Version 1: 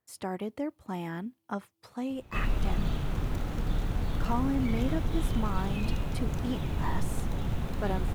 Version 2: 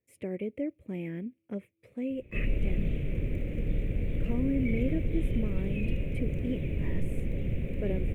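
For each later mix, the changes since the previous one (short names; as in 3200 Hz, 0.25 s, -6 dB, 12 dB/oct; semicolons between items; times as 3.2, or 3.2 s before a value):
master: add EQ curve 240 Hz 0 dB, 550 Hz +3 dB, 820 Hz -23 dB, 1400 Hz -20 dB, 2300 Hz +5 dB, 4500 Hz -25 dB, 8900 Hz -13 dB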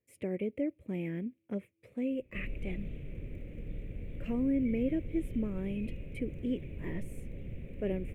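background -11.0 dB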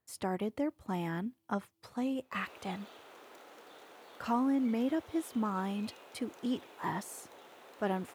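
background: add HPF 400 Hz 24 dB/oct; master: remove EQ curve 240 Hz 0 dB, 550 Hz +3 dB, 820 Hz -23 dB, 1400 Hz -20 dB, 2300 Hz +5 dB, 4500 Hz -25 dB, 8900 Hz -13 dB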